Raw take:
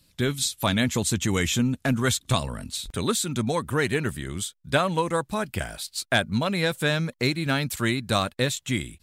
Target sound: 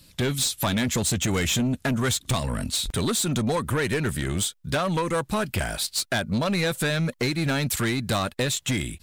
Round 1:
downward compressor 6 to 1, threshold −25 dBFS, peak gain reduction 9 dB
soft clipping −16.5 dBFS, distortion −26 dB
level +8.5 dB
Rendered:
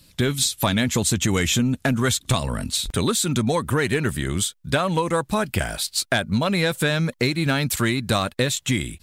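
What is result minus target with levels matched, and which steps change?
soft clipping: distortion −14 dB
change: soft clipping −27.5 dBFS, distortion −11 dB

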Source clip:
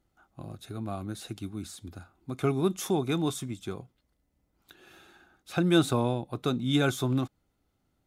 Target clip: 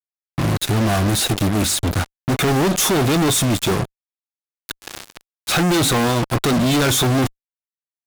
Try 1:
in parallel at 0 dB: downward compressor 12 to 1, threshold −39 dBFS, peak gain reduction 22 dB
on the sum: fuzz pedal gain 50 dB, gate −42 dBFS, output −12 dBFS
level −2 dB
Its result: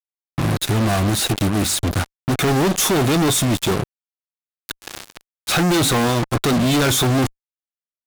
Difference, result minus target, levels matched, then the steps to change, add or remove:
downward compressor: peak gain reduction +6.5 dB
change: downward compressor 12 to 1, threshold −32 dBFS, peak gain reduction 15.5 dB

